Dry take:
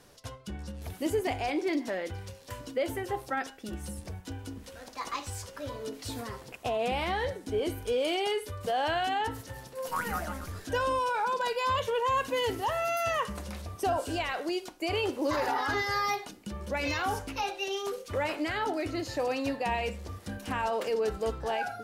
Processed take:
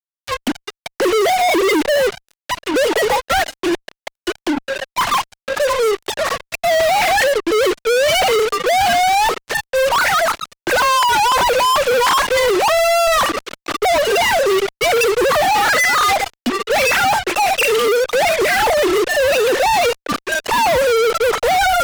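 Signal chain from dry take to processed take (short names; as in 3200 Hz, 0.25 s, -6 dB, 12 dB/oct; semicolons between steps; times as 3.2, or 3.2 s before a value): sine-wave speech; in parallel at -1.5 dB: limiter -25 dBFS, peak gain reduction 11 dB; on the sum: fuzz box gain 50 dB, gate -44 dBFS; mismatched tape noise reduction encoder only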